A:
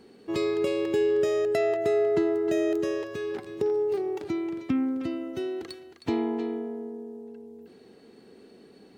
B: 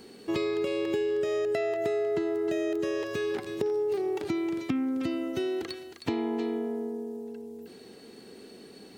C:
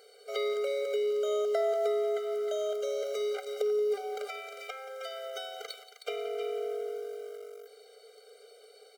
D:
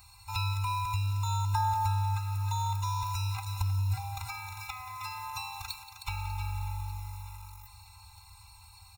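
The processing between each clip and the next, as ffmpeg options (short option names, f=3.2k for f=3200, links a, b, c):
-filter_complex "[0:a]acrossover=split=3800[a][b];[b]acompressor=threshold=-57dB:ratio=4:attack=1:release=60[c];[a][c]amix=inputs=2:normalize=0,highshelf=f=3.3k:g=10,acompressor=threshold=-29dB:ratio=6,volume=3dB"
-filter_complex "[0:a]asplit=2[a][b];[b]aeval=exprs='val(0)*gte(abs(val(0)),0.0133)':c=same,volume=-4.5dB[c];[a][c]amix=inputs=2:normalize=0,aecho=1:1:178:0.188,afftfilt=real='re*eq(mod(floor(b*sr/1024/400),2),1)':imag='im*eq(mod(floor(b*sr/1024/400),2),1)':win_size=1024:overlap=0.75,volume=-1.5dB"
-filter_complex "[0:a]afftfilt=real='real(if(between(b,1,1008),(2*floor((b-1)/24)+1)*24-b,b),0)':imag='imag(if(between(b,1,1008),(2*floor((b-1)/24)+1)*24-b,b),0)*if(between(b,1,1008),-1,1)':win_size=2048:overlap=0.75,aecho=1:1:595|1190|1785|2380|2975:0.126|0.0755|0.0453|0.0272|0.0163,acrossover=split=2100[a][b];[b]crystalizer=i=1.5:c=0[c];[a][c]amix=inputs=2:normalize=0"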